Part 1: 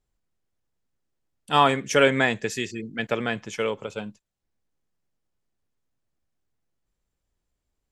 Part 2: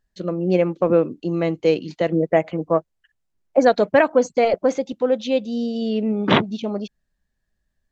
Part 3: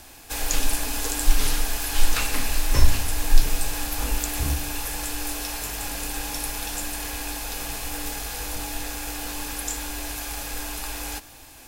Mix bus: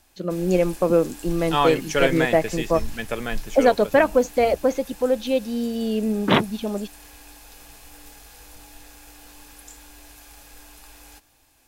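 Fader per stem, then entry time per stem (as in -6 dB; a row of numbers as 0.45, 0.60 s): -2.5, -1.5, -14.5 dB; 0.00, 0.00, 0.00 s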